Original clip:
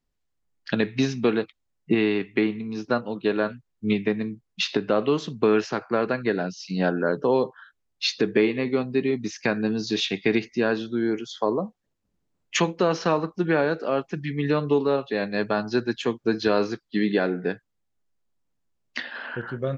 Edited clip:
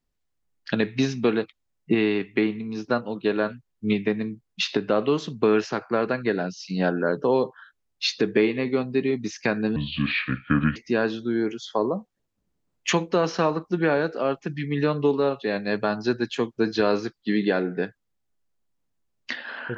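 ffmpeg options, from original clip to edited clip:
ffmpeg -i in.wav -filter_complex "[0:a]asplit=3[link_01][link_02][link_03];[link_01]atrim=end=9.764[link_04];[link_02]atrim=start=9.76:end=10.43,asetpts=PTS-STARTPTS,asetrate=29547,aresample=44100[link_05];[link_03]atrim=start=10.426[link_06];[link_04][link_05]acrossfade=duration=0.004:curve1=hsin:curve2=hsin[link_07];[link_07][link_06]acrossfade=duration=0.004:curve1=hsin:curve2=hsin" out.wav

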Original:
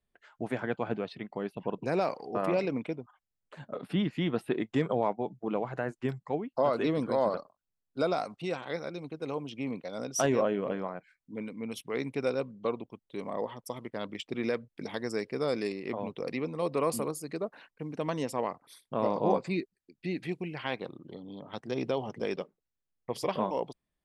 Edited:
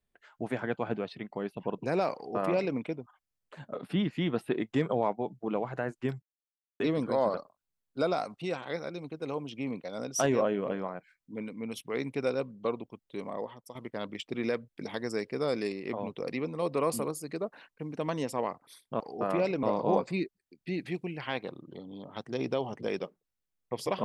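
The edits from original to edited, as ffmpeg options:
ffmpeg -i in.wav -filter_complex "[0:a]asplit=6[link_01][link_02][link_03][link_04][link_05][link_06];[link_01]atrim=end=6.22,asetpts=PTS-STARTPTS,afade=type=out:start_time=6.216:duration=0.004:curve=hsin[link_07];[link_02]atrim=start=6.22:end=6.8,asetpts=PTS-STARTPTS,volume=0[link_08];[link_03]atrim=start=6.8:end=13.75,asetpts=PTS-STARTPTS,afade=type=in:duration=0.004:curve=hsin,afade=type=out:start_time=6.37:duration=0.58:silence=0.298538[link_09];[link_04]atrim=start=13.75:end=19.002,asetpts=PTS-STARTPTS,afade=type=in:duration=0.004:curve=hsin:silence=0.298538[link_10];[link_05]atrim=start=2.138:end=2.772[link_11];[link_06]atrim=start=18.998[link_12];[link_07][link_08][link_09][link_10]concat=n=4:v=0:a=1[link_13];[link_13][link_11]acrossfade=duration=0.004:curve1=hsin:curve2=hsin[link_14];[link_14][link_12]acrossfade=duration=0.004:curve1=hsin:curve2=hsin" out.wav

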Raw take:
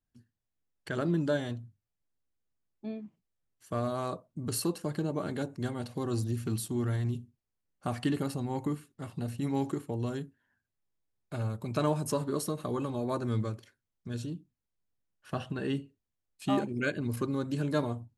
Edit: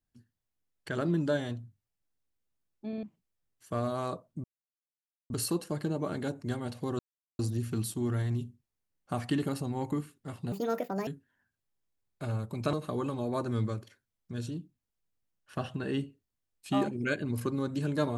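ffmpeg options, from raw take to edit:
ffmpeg -i in.wav -filter_complex "[0:a]asplit=9[link_01][link_02][link_03][link_04][link_05][link_06][link_07][link_08][link_09];[link_01]atrim=end=2.932[link_10];[link_02]atrim=start=2.878:end=2.932[link_11];[link_03]atrim=start=2.878:end=2.932[link_12];[link_04]atrim=start=3.028:end=4.44,asetpts=PTS-STARTPTS,afade=type=out:start_time=1.408:duration=0.004:curve=hsin,apad=pad_dur=0.86[link_13];[link_05]atrim=start=4.44:end=6.13,asetpts=PTS-STARTPTS,afade=type=in:duration=0.004:curve=hsin,afade=type=out:start_time=1.686:duration=0.004:curve=hsin,apad=pad_dur=0.4[link_14];[link_06]atrim=start=6.13:end=9.264,asetpts=PTS-STARTPTS,afade=type=in:duration=0.004:curve=hsin[link_15];[link_07]atrim=start=9.26:end=10.18,asetpts=PTS-STARTPTS,asetrate=73647,aresample=44100[link_16];[link_08]atrim=start=10.176:end=11.842[link_17];[link_09]atrim=start=12.488[link_18];[link_10][link_11]acrossfade=duration=0.004:curve1=hsin:curve2=hsin[link_19];[link_19][link_12]acrossfade=duration=0.004:curve1=hsin:curve2=hsin[link_20];[link_13][link_14][link_15]concat=n=3:v=0:a=1[link_21];[link_20][link_21]acrossfade=duration=0.004:curve1=hsin:curve2=hsin[link_22];[link_22][link_16]acrossfade=duration=0.004:curve1=hsin:curve2=hsin[link_23];[link_23][link_17]acrossfade=duration=0.004:curve1=hsin:curve2=hsin[link_24];[link_24][link_18]acrossfade=duration=0.004:curve1=hsin:curve2=hsin" out.wav

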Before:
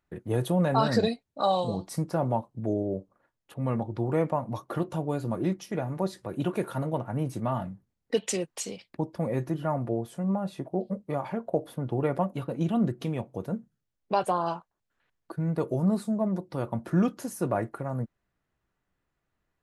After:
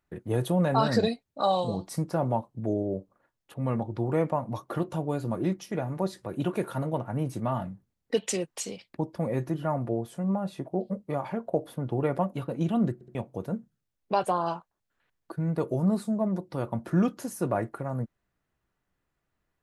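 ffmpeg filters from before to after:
ffmpeg -i in.wav -filter_complex "[0:a]asplit=4[link_01][link_02][link_03][link_04];[link_01]atrim=end=13.012[link_05];[link_02]atrim=start=12.938:end=13.012[link_06];[link_03]atrim=start=12.938:end=13.012[link_07];[link_04]atrim=start=13.148[link_08];[link_05][link_06]acrossfade=duration=0.004:curve1=hsin:curve2=hsin[link_09];[link_09][link_07]acrossfade=duration=0.004:curve1=hsin:curve2=hsin[link_10];[link_10][link_08]acrossfade=duration=0.004:curve1=hsin:curve2=hsin" out.wav

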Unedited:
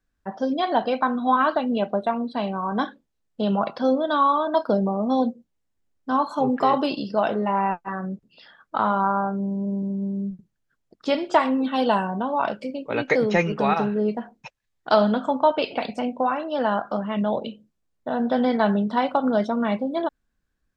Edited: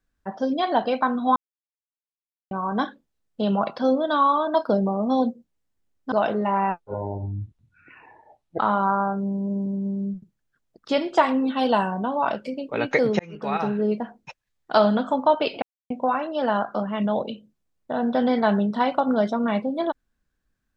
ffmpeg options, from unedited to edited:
ffmpeg -i in.wav -filter_complex "[0:a]asplit=9[link_01][link_02][link_03][link_04][link_05][link_06][link_07][link_08][link_09];[link_01]atrim=end=1.36,asetpts=PTS-STARTPTS,afade=type=out:start_time=1.356:duration=0.004:curve=hsin[link_10];[link_02]atrim=start=1.36:end=2.51,asetpts=PTS-STARTPTS,volume=0[link_11];[link_03]atrim=start=2.51:end=6.122,asetpts=PTS-STARTPTS,afade=type=in:duration=0.004:curve=hsin[link_12];[link_04]atrim=start=7.128:end=7.814[link_13];[link_05]atrim=start=7.81:end=8.76,asetpts=PTS-STARTPTS,asetrate=23373,aresample=44100,atrim=end_sample=79047,asetpts=PTS-STARTPTS[link_14];[link_06]atrim=start=8.756:end=13.36,asetpts=PTS-STARTPTS,afade=type=out:start_time=4.6:duration=0.004:curve=hsin[link_15];[link_07]atrim=start=13.36:end=15.79,asetpts=PTS-STARTPTS,afade=type=in:duration=0.57,afade=type=out:start_time=2.426:duration=0.004:curve=hsin[link_16];[link_08]atrim=start=15.79:end=16.07,asetpts=PTS-STARTPTS,volume=0[link_17];[link_09]atrim=start=16.07,asetpts=PTS-STARTPTS,afade=type=in:duration=0.004:curve=hsin[link_18];[link_10][link_11][link_12]concat=n=3:v=0:a=1[link_19];[link_19][link_13]acrossfade=duration=0.004:curve1=hsin:curve2=hsin[link_20];[link_20][link_14]acrossfade=duration=0.004:curve1=hsin:curve2=hsin[link_21];[link_15][link_16][link_17][link_18]concat=n=4:v=0:a=1[link_22];[link_21][link_22]acrossfade=duration=0.004:curve1=hsin:curve2=hsin" out.wav

